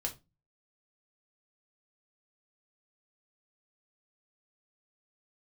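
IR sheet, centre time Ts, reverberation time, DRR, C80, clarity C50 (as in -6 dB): 10 ms, 0.25 s, 0.5 dB, 22.5 dB, 15.5 dB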